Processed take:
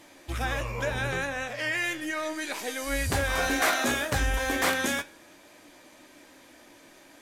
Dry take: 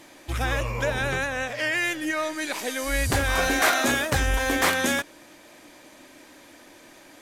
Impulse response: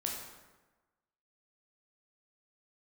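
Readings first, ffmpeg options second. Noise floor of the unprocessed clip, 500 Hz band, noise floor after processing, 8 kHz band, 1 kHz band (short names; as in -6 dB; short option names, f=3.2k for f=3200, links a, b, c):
-51 dBFS, -3.5 dB, -54 dBFS, -3.5 dB, -3.5 dB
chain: -filter_complex "[0:a]flanger=delay=9.9:depth=8.7:regen=60:speed=0.36:shape=triangular,asplit=2[a][b];[1:a]atrim=start_sample=2205[c];[b][c]afir=irnorm=-1:irlink=0,volume=-22.5dB[d];[a][d]amix=inputs=2:normalize=0"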